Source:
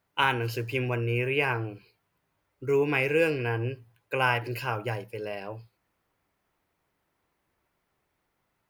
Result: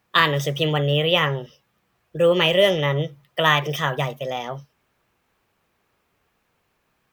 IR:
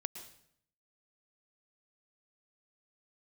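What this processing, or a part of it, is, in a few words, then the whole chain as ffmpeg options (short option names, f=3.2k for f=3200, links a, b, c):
nightcore: -af "asetrate=53802,aresample=44100,volume=7.5dB"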